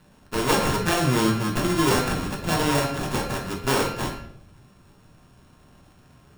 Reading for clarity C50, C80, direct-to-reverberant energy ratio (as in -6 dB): 6.0 dB, 9.5 dB, -1.0 dB